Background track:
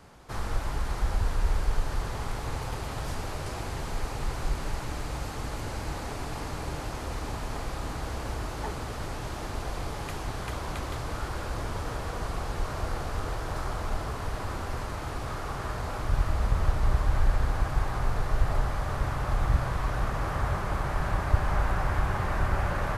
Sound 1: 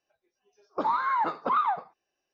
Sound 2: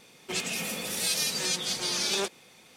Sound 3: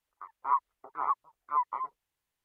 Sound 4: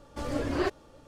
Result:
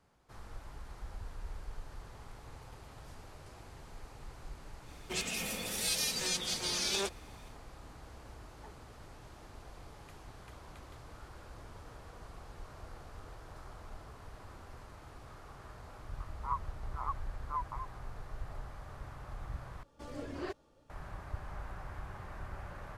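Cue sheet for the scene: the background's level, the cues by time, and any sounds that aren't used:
background track -17.5 dB
4.81 add 2 -5 dB, fades 0.10 s
15.99 add 3 -9 dB
19.83 replace with 4 -12 dB
not used: 1

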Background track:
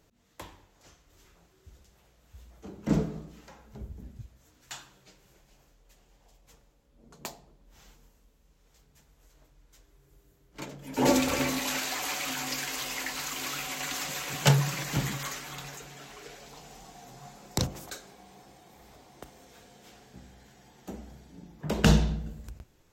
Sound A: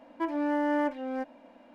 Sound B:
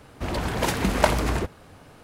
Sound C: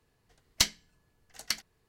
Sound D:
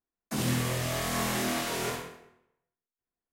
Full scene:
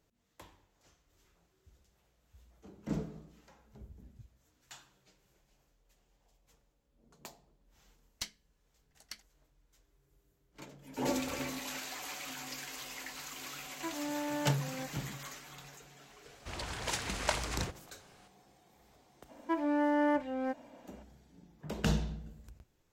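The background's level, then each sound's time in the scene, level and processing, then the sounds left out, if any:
background track -10 dB
7.61 add C -15.5 dB
13.63 add A -9.5 dB + short-mantissa float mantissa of 4-bit
16.25 add B -15 dB + EQ curve 120 Hz 0 dB, 200 Hz -5 dB, 7300 Hz +12 dB, 12000 Hz +1 dB
19.29 add A -1.5 dB
not used: D

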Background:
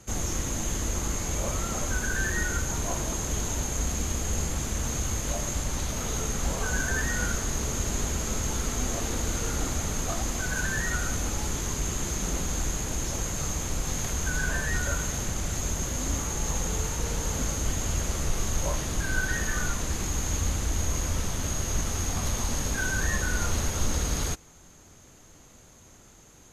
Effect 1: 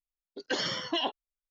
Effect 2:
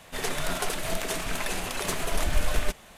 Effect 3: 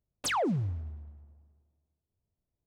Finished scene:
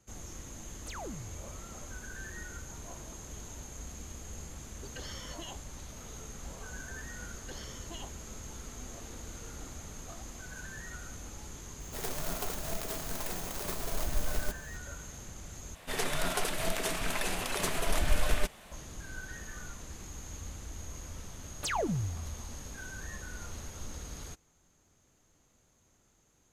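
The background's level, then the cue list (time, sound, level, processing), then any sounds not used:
background -15.5 dB
0.62 add 3 -14.5 dB
4.46 add 1 -5.5 dB + compressor 4:1, threshold -38 dBFS
6.98 add 1 -17.5 dB
11.8 add 2 -7 dB + clock jitter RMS 0.12 ms
15.75 replace with 2 -2.5 dB
21.39 add 3 -2 dB + notch comb 260 Hz

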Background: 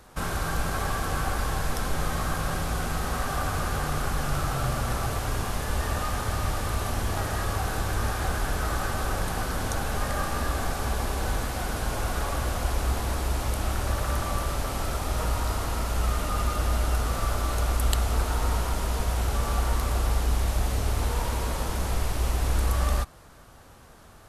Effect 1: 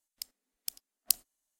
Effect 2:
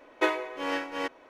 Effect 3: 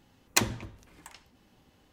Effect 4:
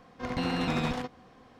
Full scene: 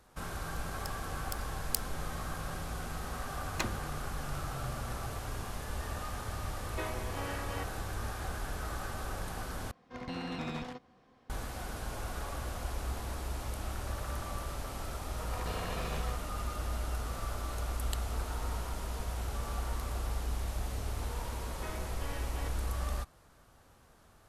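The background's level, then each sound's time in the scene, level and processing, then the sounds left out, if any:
background -10.5 dB
0.64 add 1 -6 dB
3.23 add 3 -8 dB + LPF 2900 Hz 6 dB/oct
6.56 add 2 -15.5 dB + fast leveller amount 50%
9.71 replace with 4 -9 dB
15.09 add 4 -7.5 dB + minimum comb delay 1.7 ms
21.41 add 2 -12 dB + limiter -23.5 dBFS

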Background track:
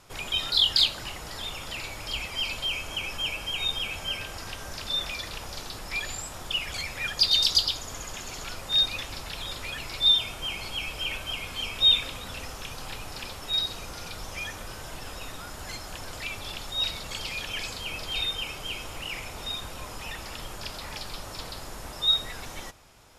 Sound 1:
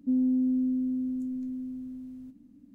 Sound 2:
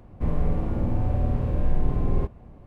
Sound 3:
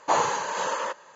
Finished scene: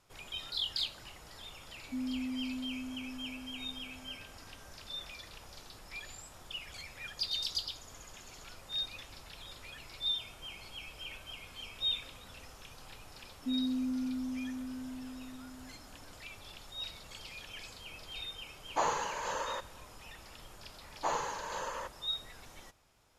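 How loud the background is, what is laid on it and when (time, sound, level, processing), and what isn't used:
background track -13.5 dB
1.85 add 1 -11.5 dB
13.39 add 1 -8 dB
18.68 add 3 -8.5 dB
20.95 add 3 -11 dB
not used: 2

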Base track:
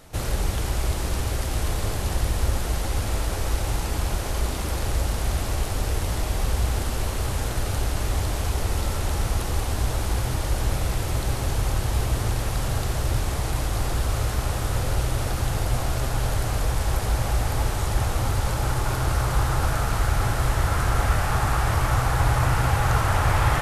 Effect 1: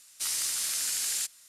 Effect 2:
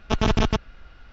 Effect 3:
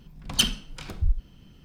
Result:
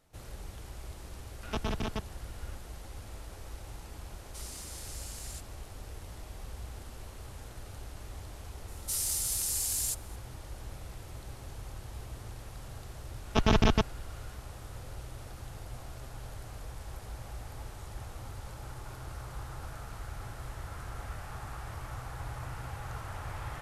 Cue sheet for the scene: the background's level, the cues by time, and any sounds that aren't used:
base track -19.5 dB
1.43 add 2 -13 dB + three-band squash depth 70%
4.14 add 1 -15.5 dB
8.68 add 1 -13.5 dB + RIAA curve recording
13.25 add 2 -3 dB
not used: 3

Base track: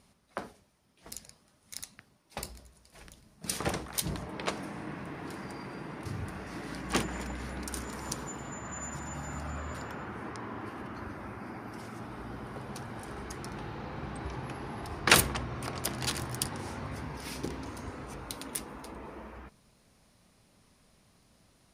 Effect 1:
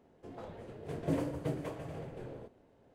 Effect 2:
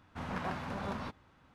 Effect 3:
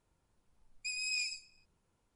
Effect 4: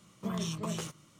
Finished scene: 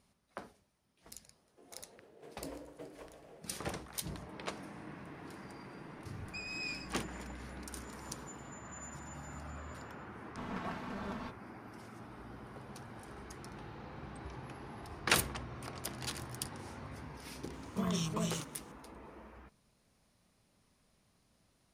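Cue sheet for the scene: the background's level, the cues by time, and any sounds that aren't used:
base track -8 dB
1.34 add 1 -10 dB + HPF 310 Hz
5.49 add 3 -3 dB + LPF 4300 Hz
10.2 add 2 -5.5 dB + comb 4.5 ms
17.53 add 4

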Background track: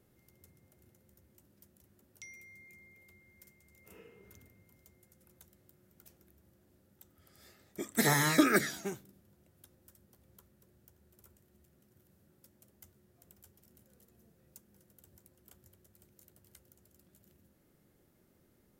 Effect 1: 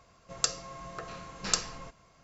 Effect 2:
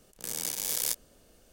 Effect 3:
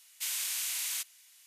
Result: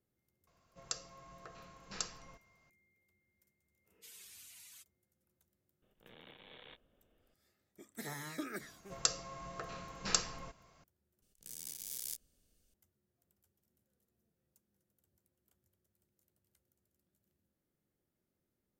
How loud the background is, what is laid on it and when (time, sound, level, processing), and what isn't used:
background track -17 dB
0.47 add 1 -12 dB
3.81 add 3 -15.5 dB + per-bin expansion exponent 3
5.82 add 2 -13.5 dB + downsampling 8000 Hz
8.61 add 1 -3.5 dB
11.22 replace with 2 -12 dB + bell 800 Hz -13.5 dB 2.8 oct

